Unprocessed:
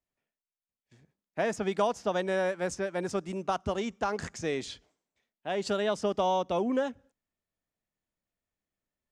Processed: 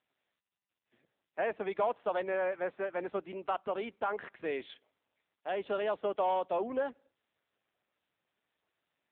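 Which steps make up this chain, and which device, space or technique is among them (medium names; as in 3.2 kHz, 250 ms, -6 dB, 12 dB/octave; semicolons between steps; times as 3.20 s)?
telephone (band-pass 390–3500 Hz; saturation -21 dBFS, distortion -20 dB; AMR-NB 6.7 kbps 8 kHz)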